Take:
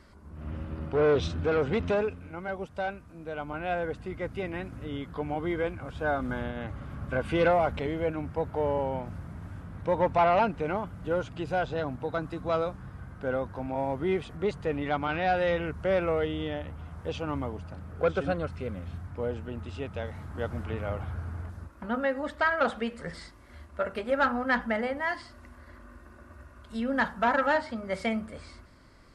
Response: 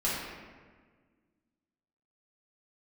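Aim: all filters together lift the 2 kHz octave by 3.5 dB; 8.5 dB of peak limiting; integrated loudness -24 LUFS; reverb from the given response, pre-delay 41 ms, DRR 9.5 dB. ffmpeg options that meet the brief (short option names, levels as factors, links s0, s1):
-filter_complex "[0:a]equalizer=f=2000:t=o:g=4.5,alimiter=limit=0.0891:level=0:latency=1,asplit=2[s0][s1];[1:a]atrim=start_sample=2205,adelay=41[s2];[s1][s2]afir=irnorm=-1:irlink=0,volume=0.119[s3];[s0][s3]amix=inputs=2:normalize=0,volume=2.51"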